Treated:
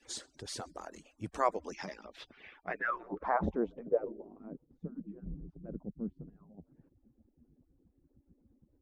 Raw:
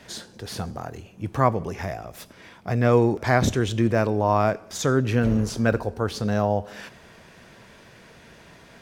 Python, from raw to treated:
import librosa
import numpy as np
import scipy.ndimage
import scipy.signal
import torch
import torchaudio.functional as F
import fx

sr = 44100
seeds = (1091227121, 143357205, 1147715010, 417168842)

y = fx.hpss_only(x, sr, part='percussive')
y = fx.filter_sweep_lowpass(y, sr, from_hz=8100.0, to_hz=200.0, start_s=1.47, end_s=4.72, q=2.4)
y = y * librosa.db_to_amplitude(-8.5)